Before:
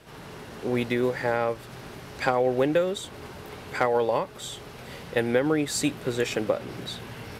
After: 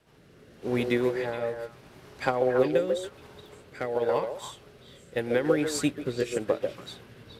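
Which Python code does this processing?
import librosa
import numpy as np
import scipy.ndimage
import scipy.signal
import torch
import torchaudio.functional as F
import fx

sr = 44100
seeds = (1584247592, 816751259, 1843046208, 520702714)

y = fx.rotary(x, sr, hz=0.85)
y = fx.echo_stepped(y, sr, ms=141, hz=480.0, octaves=1.4, feedback_pct=70, wet_db=-1)
y = fx.upward_expand(y, sr, threshold_db=-43.0, expansion=1.5)
y = y * librosa.db_to_amplitude(1.5)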